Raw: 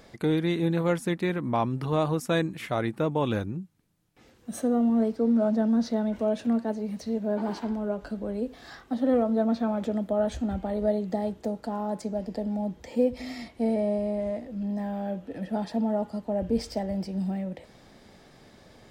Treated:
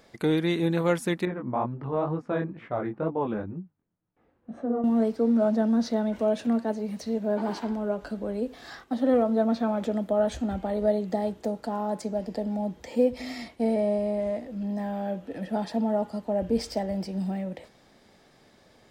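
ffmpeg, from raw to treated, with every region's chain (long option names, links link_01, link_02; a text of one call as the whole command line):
ffmpeg -i in.wav -filter_complex "[0:a]asettb=1/sr,asplit=3[link_01][link_02][link_03];[link_01]atrim=end=1.254[link_04];[link_02]atrim=start=1.25:end=4.84,asetpts=PTS-STARTPTS,afade=type=in:duration=0.004:curve=qsin,afade=type=out:start_time=3.586:duration=0.004:curve=qsin,lowpass=1300,flanger=delay=17:depth=6.9:speed=2.1[link_05];[link_03]atrim=start=4.836[link_06];[link_04][link_05]acrossfade=duration=0.004:curve1=hsin:curve2=qsin[link_07];[link_07][link_06]acrossfade=duration=0.004:curve1=qsin:curve2=hsin,lowshelf=frequency=190:gain=-6,agate=range=-6dB:threshold=-50dB:ratio=16:detection=peak,volume=2.5dB" out.wav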